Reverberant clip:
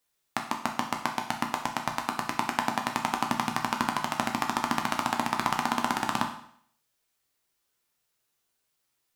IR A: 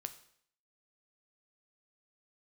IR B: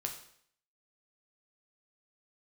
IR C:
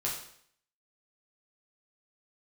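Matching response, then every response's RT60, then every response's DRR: B; 0.65, 0.65, 0.65 s; 8.5, 2.5, -5.0 dB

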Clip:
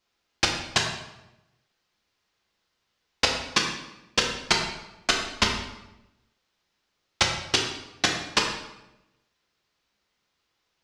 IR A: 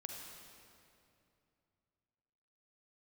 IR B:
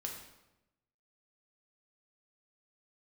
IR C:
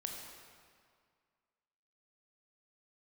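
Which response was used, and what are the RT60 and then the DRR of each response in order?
B; 2.6, 0.95, 2.0 s; 1.0, 0.0, 1.0 dB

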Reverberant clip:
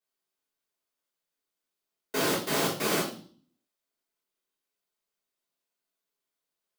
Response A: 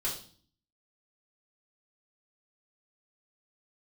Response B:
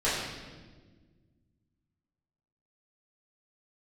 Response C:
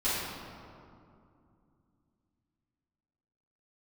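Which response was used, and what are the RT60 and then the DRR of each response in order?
A; 0.45, 1.4, 2.5 s; -7.5, -12.0, -13.5 dB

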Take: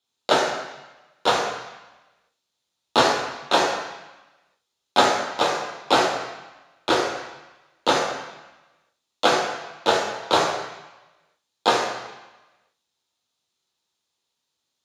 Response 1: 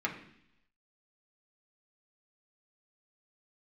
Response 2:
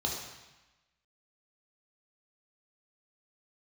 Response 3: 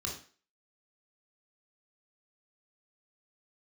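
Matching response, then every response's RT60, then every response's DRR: 2; 0.70, 1.1, 0.40 s; -2.0, -2.0, -0.5 dB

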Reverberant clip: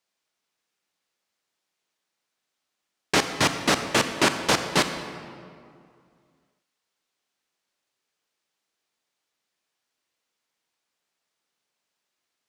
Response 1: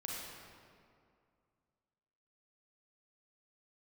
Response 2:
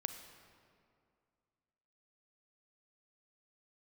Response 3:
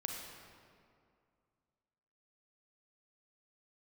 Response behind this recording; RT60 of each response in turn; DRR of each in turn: 2; 2.3, 2.3, 2.3 s; -4.0, 7.5, 0.5 dB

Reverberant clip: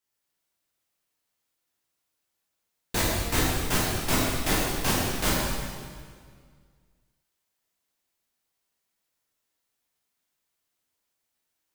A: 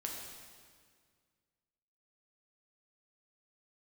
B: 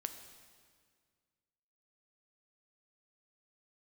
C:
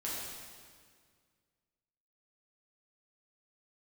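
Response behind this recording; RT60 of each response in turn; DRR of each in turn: C; 1.9, 1.9, 1.9 s; -1.0, 7.0, -7.0 dB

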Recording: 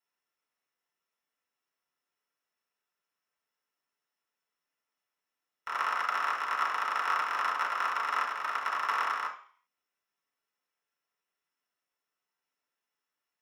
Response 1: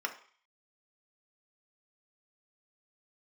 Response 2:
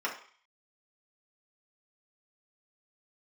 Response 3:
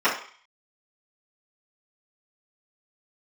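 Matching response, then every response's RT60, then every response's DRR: 2; 0.45, 0.45, 0.45 s; 3.5, -4.0, -13.5 dB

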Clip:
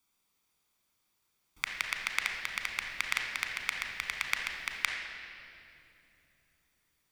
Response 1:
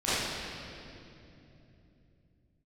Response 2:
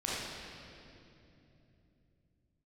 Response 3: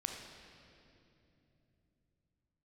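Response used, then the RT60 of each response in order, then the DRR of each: 3; 3.0, 3.0, 2.9 s; -14.5, -8.0, 2.0 dB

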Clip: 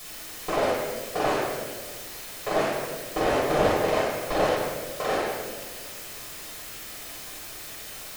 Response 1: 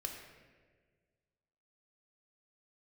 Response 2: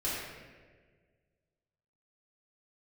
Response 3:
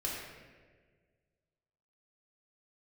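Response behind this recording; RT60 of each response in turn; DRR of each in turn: 3; 1.6, 1.6, 1.6 s; 2.0, -9.0, -4.5 dB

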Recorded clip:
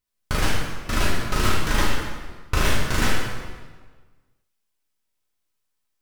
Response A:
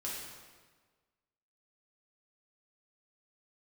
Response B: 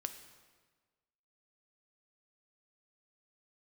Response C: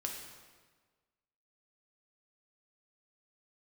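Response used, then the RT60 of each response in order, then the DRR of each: A; 1.5, 1.5, 1.5 s; -6.0, 7.5, 0.5 dB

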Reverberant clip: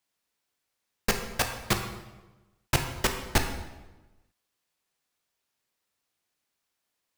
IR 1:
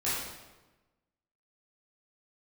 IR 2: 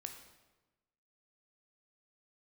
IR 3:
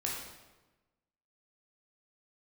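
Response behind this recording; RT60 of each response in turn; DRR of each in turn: 2; 1.1, 1.1, 1.1 s; -11.0, 4.5, -3.5 dB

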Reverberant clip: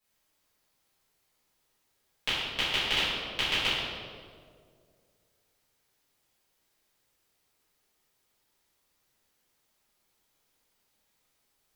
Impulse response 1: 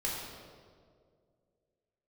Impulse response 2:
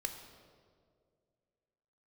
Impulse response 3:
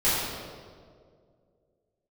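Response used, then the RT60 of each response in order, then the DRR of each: 3; 2.1, 2.1, 2.1 s; -5.0, 4.5, -12.5 dB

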